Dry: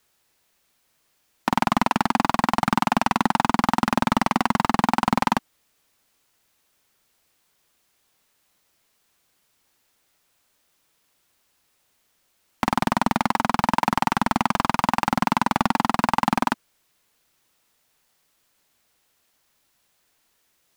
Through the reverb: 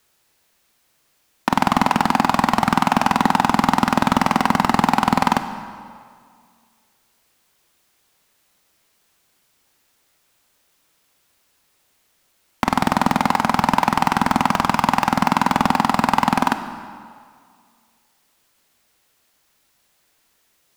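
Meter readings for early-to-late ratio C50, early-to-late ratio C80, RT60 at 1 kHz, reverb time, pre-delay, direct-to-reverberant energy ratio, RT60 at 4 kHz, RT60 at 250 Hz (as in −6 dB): 10.0 dB, 11.0 dB, 2.1 s, 2.1 s, 19 ms, 9.0 dB, 1.6 s, 1.9 s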